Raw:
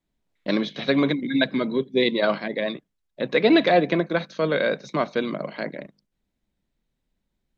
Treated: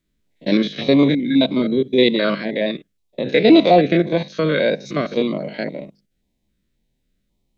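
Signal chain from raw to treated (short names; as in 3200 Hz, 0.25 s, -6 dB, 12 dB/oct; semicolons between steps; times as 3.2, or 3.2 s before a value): stepped spectrum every 50 ms; stepped notch 3.7 Hz 800–1700 Hz; gain +8 dB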